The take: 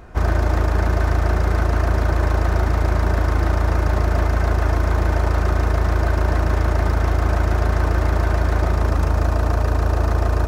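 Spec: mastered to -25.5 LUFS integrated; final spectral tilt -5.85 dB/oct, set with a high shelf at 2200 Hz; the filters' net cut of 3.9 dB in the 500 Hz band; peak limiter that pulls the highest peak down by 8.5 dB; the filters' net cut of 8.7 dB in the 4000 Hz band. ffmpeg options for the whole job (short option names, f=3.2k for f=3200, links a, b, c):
-af "equalizer=f=500:t=o:g=-5,highshelf=f=2.2k:g=-3.5,equalizer=f=4k:t=o:g=-8,volume=0.5dB,alimiter=limit=-16dB:level=0:latency=1"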